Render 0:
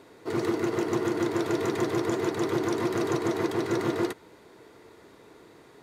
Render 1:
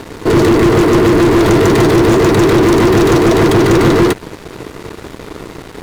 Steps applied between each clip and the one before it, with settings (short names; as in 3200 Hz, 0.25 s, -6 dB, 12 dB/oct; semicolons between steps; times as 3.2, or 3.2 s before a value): sample leveller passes 5; low shelf 220 Hz +11 dB; gain +5.5 dB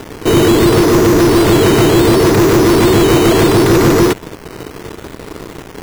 decimation with a swept rate 10×, swing 60% 0.71 Hz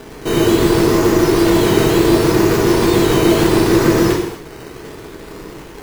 non-linear reverb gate 0.32 s falling, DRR -2 dB; gain -8 dB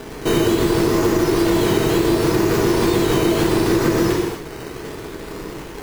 compressor, threshold -15 dBFS, peak gain reduction 8 dB; gain +1.5 dB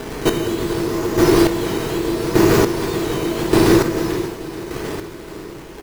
chopper 0.85 Hz, depth 65%, duty 25%; feedback echo 0.437 s, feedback 59%, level -15 dB; gain +4.5 dB